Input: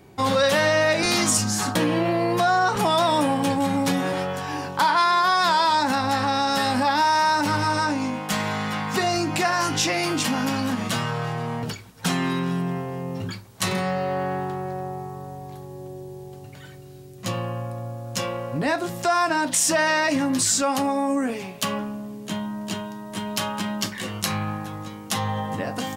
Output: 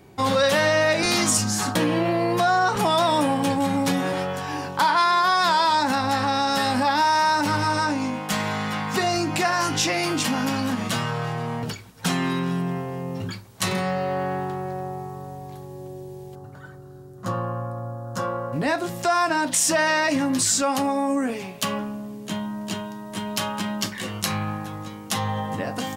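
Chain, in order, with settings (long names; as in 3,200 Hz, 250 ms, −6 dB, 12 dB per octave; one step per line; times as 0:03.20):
0:16.35–0:18.53: high shelf with overshoot 1,800 Hz −8.5 dB, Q 3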